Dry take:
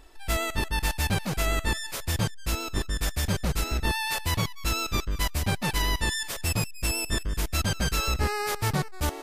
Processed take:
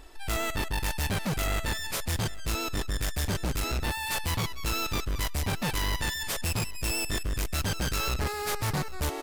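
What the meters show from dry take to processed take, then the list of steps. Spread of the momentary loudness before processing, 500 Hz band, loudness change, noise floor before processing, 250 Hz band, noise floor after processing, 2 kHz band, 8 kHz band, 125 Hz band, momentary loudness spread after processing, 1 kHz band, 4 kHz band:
3 LU, −2.0 dB, −2.0 dB, −37 dBFS, −2.5 dB, −34 dBFS, −2.5 dB, −1.5 dB, −2.5 dB, 2 LU, −2.5 dB, −2.0 dB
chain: hard clipping −29 dBFS, distortion −7 dB
single-tap delay 805 ms −18.5 dB
level +3 dB

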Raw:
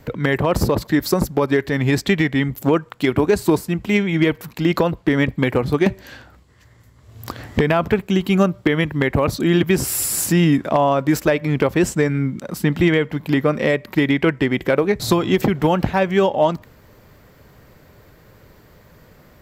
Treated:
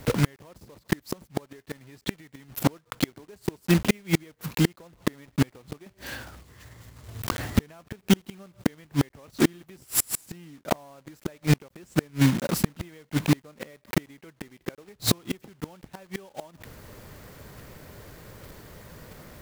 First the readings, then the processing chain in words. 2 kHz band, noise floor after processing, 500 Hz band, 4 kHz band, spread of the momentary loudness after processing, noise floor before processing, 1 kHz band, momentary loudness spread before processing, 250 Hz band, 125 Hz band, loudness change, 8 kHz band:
−12.5 dB, −65 dBFS, −16.0 dB, −6.0 dB, 21 LU, −50 dBFS, −14.0 dB, 4 LU, −10.0 dB, −7.5 dB, −9.5 dB, −5.5 dB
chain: one scale factor per block 3 bits
gate with flip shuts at −12 dBFS, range −34 dB
level +2 dB

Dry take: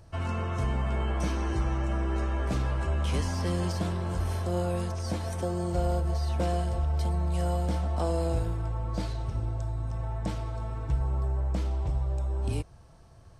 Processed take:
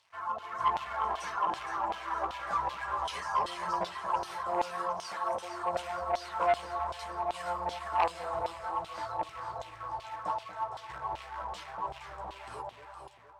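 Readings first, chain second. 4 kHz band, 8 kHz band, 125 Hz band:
−0.5 dB, −6.0 dB, −25.5 dB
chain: high-shelf EQ 7,100 Hz +9.5 dB
multi-voice chorus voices 6, 0.49 Hz, delay 13 ms, depth 4.4 ms
graphic EQ with 15 bands 100 Hz −3 dB, 250 Hz −10 dB, 1,000 Hz +10 dB, 2,500 Hz −11 dB
reverb reduction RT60 1.6 s
in parallel at −5 dB: log-companded quantiser 4 bits
on the sum: delay that swaps between a low-pass and a high-pass 232 ms, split 830 Hz, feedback 76%, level −3 dB
automatic gain control gain up to 7.5 dB
auto-filter band-pass saw down 2.6 Hz 720–3,400 Hz
saturating transformer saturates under 1,300 Hz

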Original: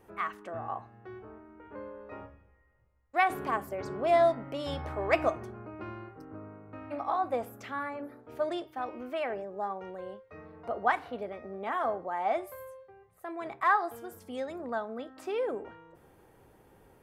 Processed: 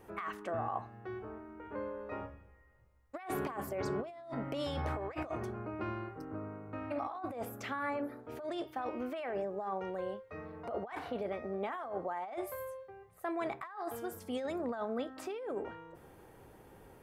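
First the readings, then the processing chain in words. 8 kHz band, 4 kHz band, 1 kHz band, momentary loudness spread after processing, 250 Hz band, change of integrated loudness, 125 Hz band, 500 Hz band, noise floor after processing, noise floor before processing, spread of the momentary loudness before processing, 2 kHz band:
can't be measured, −4.0 dB, −8.5 dB, 11 LU, 0.0 dB, −7.0 dB, +1.0 dB, −5.5 dB, −59 dBFS, −62 dBFS, 19 LU, −9.5 dB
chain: compressor whose output falls as the input rises −37 dBFS, ratio −1
level −1.5 dB

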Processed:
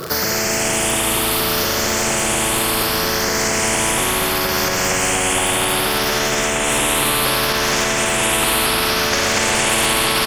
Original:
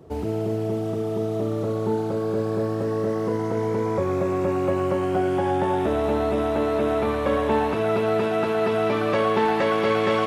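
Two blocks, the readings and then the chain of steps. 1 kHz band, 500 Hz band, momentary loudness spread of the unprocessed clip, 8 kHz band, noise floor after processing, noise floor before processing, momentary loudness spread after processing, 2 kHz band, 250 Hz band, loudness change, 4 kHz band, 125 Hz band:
+5.5 dB, −1.0 dB, 5 LU, can't be measured, −19 dBFS, −26 dBFS, 2 LU, +14.5 dB, +0.5 dB, +7.5 dB, +21.0 dB, +1.0 dB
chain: rippled gain that drifts along the octave scale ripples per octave 0.6, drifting +0.68 Hz, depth 20 dB
high-pass filter 210 Hz 12 dB per octave
high-shelf EQ 3,900 Hz +10 dB
notch filter 3,900 Hz, Q 5.7
downward compressor 2 to 1, threshold −21 dBFS, peak gain reduction 6 dB
surface crackle 81 per second −40 dBFS
echo with shifted repeats 208 ms, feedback 63%, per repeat −81 Hz, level −11 dB
spring reverb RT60 3.7 s, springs 53/59 ms, chirp 25 ms, DRR 2 dB
boost into a limiter +9.5 dB
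every bin compressed towards the loudest bin 4 to 1
level −2.5 dB

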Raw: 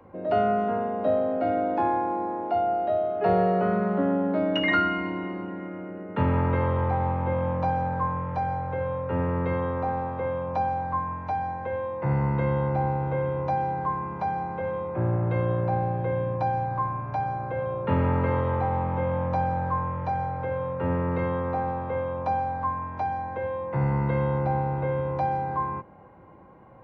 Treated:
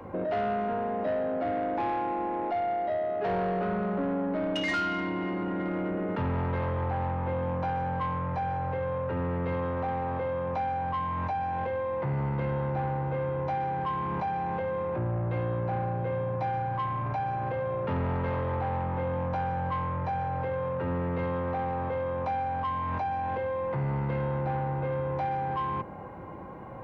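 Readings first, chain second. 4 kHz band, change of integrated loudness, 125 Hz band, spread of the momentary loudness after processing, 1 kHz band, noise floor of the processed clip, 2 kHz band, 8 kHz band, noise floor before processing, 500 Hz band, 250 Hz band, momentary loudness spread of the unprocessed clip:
−3.5 dB, −3.5 dB, −4.0 dB, 2 LU, −3.5 dB, −32 dBFS, −3.5 dB, can't be measured, −37 dBFS, −3.5 dB, −4.0 dB, 6 LU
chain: in parallel at +0.5 dB: compressor whose output falls as the input rises −37 dBFS, ratio −1
on the sum: soft clipping −20.5 dBFS, distortion −15 dB
level −3.5 dB

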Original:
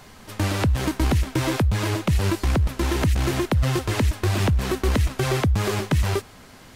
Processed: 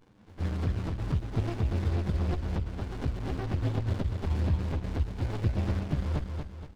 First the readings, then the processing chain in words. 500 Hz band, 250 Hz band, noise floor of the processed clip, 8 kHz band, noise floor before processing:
−12.0 dB, −9.5 dB, −51 dBFS, below −20 dB, −46 dBFS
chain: partials spread apart or drawn together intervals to 125%
high-pass filter 69 Hz 24 dB per octave
flanger swept by the level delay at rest 11.6 ms, full sweep at −20.5 dBFS
hum removal 112.3 Hz, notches 2
on a send: repeating echo 236 ms, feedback 44%, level −5 dB
on the sum: downsampling to 11,025 Hz
windowed peak hold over 65 samples
level −2 dB

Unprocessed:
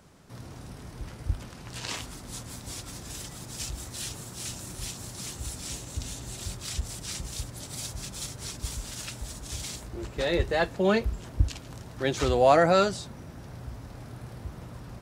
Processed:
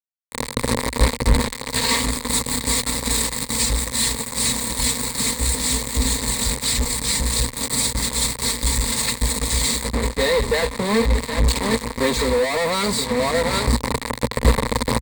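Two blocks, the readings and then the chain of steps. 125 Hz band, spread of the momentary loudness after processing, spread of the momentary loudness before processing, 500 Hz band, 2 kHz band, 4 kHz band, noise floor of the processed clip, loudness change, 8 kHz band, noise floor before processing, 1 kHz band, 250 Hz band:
+9.5 dB, 3 LU, 18 LU, +5.5 dB, +11.0 dB, +15.0 dB, −36 dBFS, +10.0 dB, +16.5 dB, −45 dBFS, +6.0 dB, +10.5 dB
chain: comb filter 4.4 ms, depth 71%
on a send: single-tap delay 769 ms −18 dB
on the sum: fuzz pedal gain 43 dB, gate −37 dBFS
EQ curve with evenly spaced ripples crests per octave 0.98, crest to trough 12 dB
speech leveller 0.5 s
level −3.5 dB

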